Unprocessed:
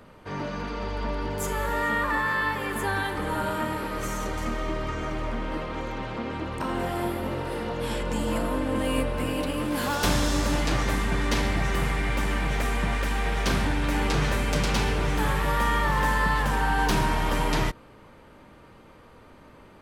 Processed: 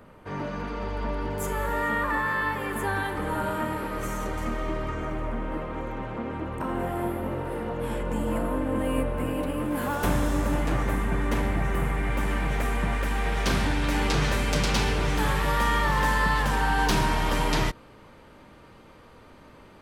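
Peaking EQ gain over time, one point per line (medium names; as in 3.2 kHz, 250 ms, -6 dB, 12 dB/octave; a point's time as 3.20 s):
peaking EQ 4.7 kHz 1.5 oct
4.76 s -6.5 dB
5.30 s -14.5 dB
11.91 s -14.5 dB
12.31 s -6.5 dB
12.99 s -6.5 dB
13.67 s +2.5 dB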